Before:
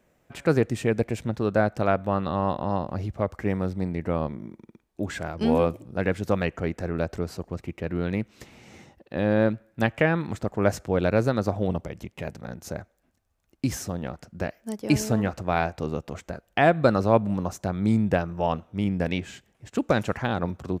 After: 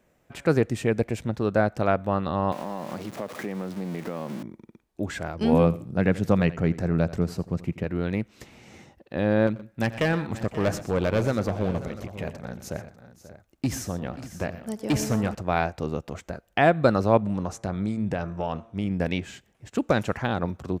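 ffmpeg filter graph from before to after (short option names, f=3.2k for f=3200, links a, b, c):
-filter_complex "[0:a]asettb=1/sr,asplit=3[a][b][c];[a]atrim=end=2.524[d];[b]atrim=start=2.52:end=4.43,asetpts=PTS-STARTPTS,afade=t=in:d=0.004:c=qsin,afade=t=out:st=1.906:d=0.004:c=qsin,aeval=exprs='val(0)+0.5*0.0211*sgn(val(0))':c=same,highpass=f=160:w=0.5412,highpass=f=160:w=1.3066,acompressor=threshold=-27dB:ratio=6:attack=3.2:release=140:knee=1:detection=peak[e];[c]atrim=start=4.426[f];[d][e]acrossfade=d=0.004:c1=hsin:c2=qsin[g];[g][f]acrossfade=d=0.004:c1=qsin:c2=hsin,asettb=1/sr,asplit=3[h][i][j];[h]atrim=end=5.524[k];[i]atrim=start=5.52:end=7.84,asetpts=PTS-STARTPTS,afade=t=in:d=0.004:c=qsin,afade=t=out:st=2.316:d=0.004:c=qsin,equalizer=f=160:t=o:w=1.1:g=8.5,aecho=1:1:83|166:0.133|0.0333,atrim=end_sample=102312[l];[j]atrim=start=7.836[m];[k][l]acrossfade=d=0.004:c1=hsin:c2=qsin[n];[n][m]acrossfade=d=0.004:c1=qsin:c2=hsin,asettb=1/sr,asplit=3[o][p][q];[o]atrim=end=9.474[r];[p]atrim=start=9.47:end=15.35,asetpts=PTS-STARTPTS,afade=t=in:d=0.004:c=qsin,afade=t=out:st=5.876:d=0.004:c=qsin,volume=18dB,asoftclip=hard,volume=-18dB,aecho=1:1:88|122|535|594:0.133|0.168|0.168|0.158,atrim=end_sample=259308[s];[q]atrim=start=15.346[t];[r][s]acrossfade=d=0.004:c1=hsin:c2=qsin[u];[u][t]acrossfade=d=0.004:c1=qsin:c2=hsin,asettb=1/sr,asplit=3[v][w][x];[v]atrim=end=17.174[y];[w]atrim=start=17.17:end=18.91,asetpts=PTS-STARTPTS,afade=t=in:d=0.004:c=qsin,afade=t=out:st=1.736:d=0.004:c=qsin,lowpass=f=11k:w=0.5412,lowpass=f=11k:w=1.3066,acompressor=threshold=-22dB:ratio=6:attack=3.2:release=140:knee=1:detection=peak,bandreject=f=113.6:t=h:w=4,bandreject=f=227.2:t=h:w=4,bandreject=f=340.8:t=h:w=4,bandreject=f=454.4:t=h:w=4,bandreject=f=568:t=h:w=4,bandreject=f=681.6:t=h:w=4,bandreject=f=795.2:t=h:w=4,bandreject=f=908.8:t=h:w=4,bandreject=f=1.0224k:t=h:w=4,bandreject=f=1.136k:t=h:w=4,bandreject=f=1.2496k:t=h:w=4,bandreject=f=1.3632k:t=h:w=4,bandreject=f=1.4768k:t=h:w=4,bandreject=f=1.5904k:t=h:w=4,bandreject=f=1.704k:t=h:w=4,bandreject=f=1.8176k:t=h:w=4,bandreject=f=1.9312k:t=h:w=4,bandreject=f=2.0448k:t=h:w=4,bandreject=f=2.1584k:t=h:w=4,bandreject=f=2.272k:t=h:w=4,bandreject=f=2.3856k:t=h:w=4[z];[x]atrim=start=18.906[aa];[y][z]acrossfade=d=0.004:c1=hsin:c2=qsin[ab];[ab][aa]acrossfade=d=0.004:c1=qsin:c2=hsin"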